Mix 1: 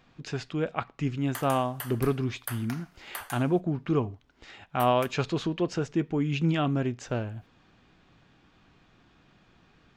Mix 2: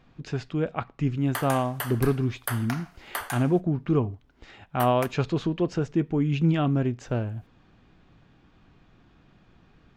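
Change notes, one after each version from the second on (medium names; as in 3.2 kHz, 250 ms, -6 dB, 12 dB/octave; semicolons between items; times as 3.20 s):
background +8.5 dB; master: add tilt EQ -1.5 dB/octave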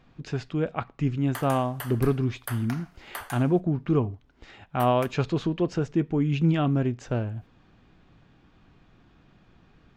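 background -5.0 dB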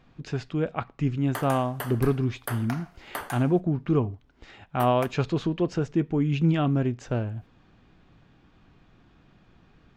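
background: remove high-pass 1.2 kHz 6 dB/octave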